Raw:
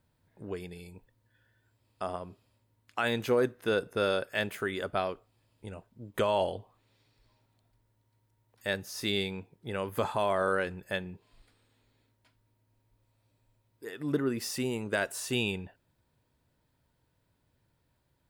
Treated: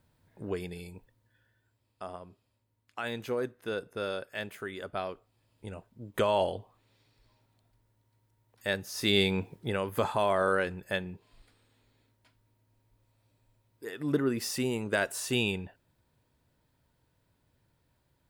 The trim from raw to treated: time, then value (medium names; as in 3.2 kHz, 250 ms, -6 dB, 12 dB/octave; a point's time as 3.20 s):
0.80 s +3.5 dB
2.04 s -6 dB
4.75 s -6 dB
5.68 s +1 dB
8.90 s +1 dB
9.53 s +12 dB
9.80 s +1.5 dB